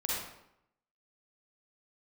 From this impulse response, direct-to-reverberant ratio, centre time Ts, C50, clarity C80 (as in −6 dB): −6.0 dB, 77 ms, −3.5 dB, 2.0 dB